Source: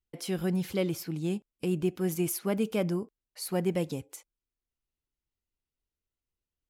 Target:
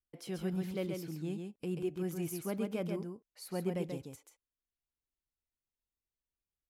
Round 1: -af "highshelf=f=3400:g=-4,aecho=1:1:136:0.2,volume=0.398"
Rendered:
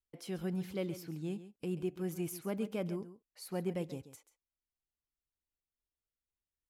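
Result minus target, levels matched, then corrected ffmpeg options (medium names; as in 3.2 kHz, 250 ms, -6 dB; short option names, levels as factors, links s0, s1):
echo-to-direct -9 dB
-af "highshelf=f=3400:g=-4,aecho=1:1:136:0.562,volume=0.398"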